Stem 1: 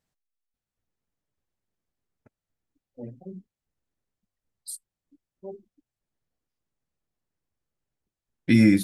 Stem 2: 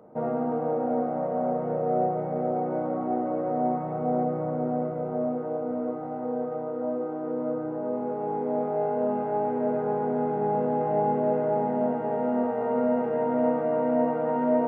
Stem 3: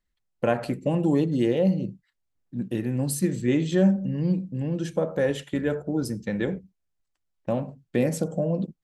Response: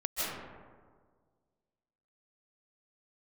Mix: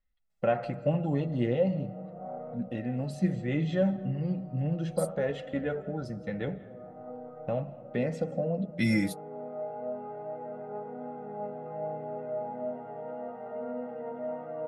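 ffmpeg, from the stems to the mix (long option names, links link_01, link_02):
-filter_complex "[0:a]adelay=300,volume=-3dB[link_01];[1:a]adelay=850,volume=-10dB,asplit=2[link_02][link_03];[link_03]volume=-21dB[link_04];[2:a]lowpass=3300,volume=-1.5dB,asplit=3[link_05][link_06][link_07];[link_06]volume=-23dB[link_08];[link_07]apad=whole_len=684871[link_09];[link_02][link_09]sidechaincompress=threshold=-44dB:ratio=8:attack=46:release=374[link_10];[3:a]atrim=start_sample=2205[link_11];[link_04][link_08]amix=inputs=2:normalize=0[link_12];[link_12][link_11]afir=irnorm=-1:irlink=0[link_13];[link_01][link_10][link_05][link_13]amix=inputs=4:normalize=0,aecho=1:1:1.5:0.47,flanger=delay=3.6:depth=4.9:regen=42:speed=0.36:shape=triangular"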